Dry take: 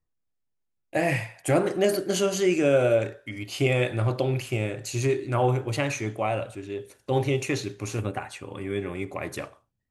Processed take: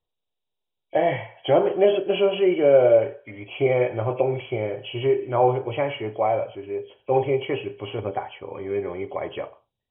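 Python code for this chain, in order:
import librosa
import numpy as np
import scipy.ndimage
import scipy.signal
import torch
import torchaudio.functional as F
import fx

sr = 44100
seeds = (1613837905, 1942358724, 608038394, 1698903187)

y = fx.freq_compress(x, sr, knee_hz=2200.0, ratio=4.0)
y = fx.band_shelf(y, sr, hz=620.0, db=10.5, octaves=1.7)
y = y * librosa.db_to_amplitude(-4.5)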